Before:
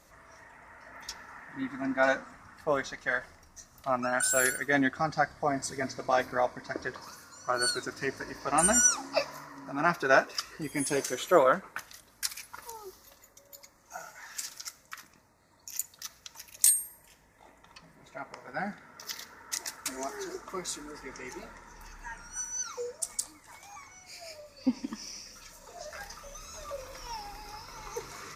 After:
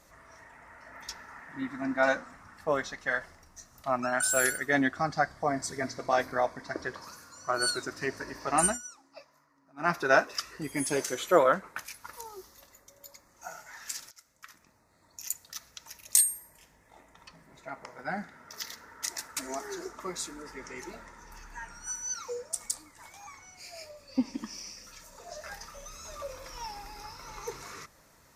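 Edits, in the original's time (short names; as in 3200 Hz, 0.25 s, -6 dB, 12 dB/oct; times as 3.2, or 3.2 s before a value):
8.64–9.9 dip -21.5 dB, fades 0.14 s
11.85–12.34 cut
14.6–15.81 fade in equal-power, from -20 dB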